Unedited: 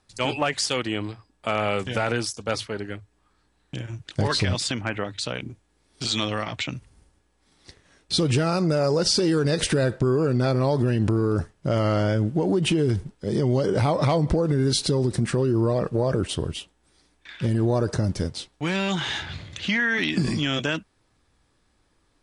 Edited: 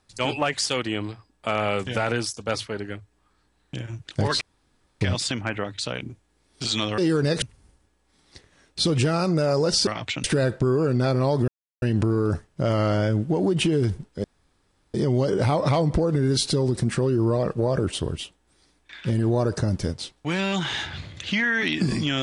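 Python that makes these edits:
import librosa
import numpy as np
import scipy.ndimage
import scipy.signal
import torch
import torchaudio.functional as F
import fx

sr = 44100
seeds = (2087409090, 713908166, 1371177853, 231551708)

y = fx.edit(x, sr, fx.insert_room_tone(at_s=4.41, length_s=0.6),
    fx.swap(start_s=6.38, length_s=0.37, other_s=9.2, other_length_s=0.44),
    fx.insert_silence(at_s=10.88, length_s=0.34),
    fx.insert_room_tone(at_s=13.3, length_s=0.7), tone=tone)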